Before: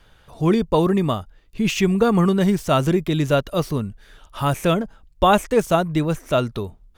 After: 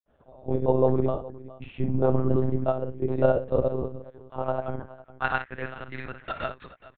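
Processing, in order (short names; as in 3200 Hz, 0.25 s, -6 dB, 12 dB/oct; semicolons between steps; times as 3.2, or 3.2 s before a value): bell 190 Hz +12 dB 1 oct; grains, pitch spread up and down by 0 st; band-pass sweep 550 Hz -> 1700 Hz, 4.42–5.12; on a send: tapped delay 51/65/418 ms -10.5/-19.5/-18 dB; on the sum: monotone LPC vocoder at 8 kHz 130 Hz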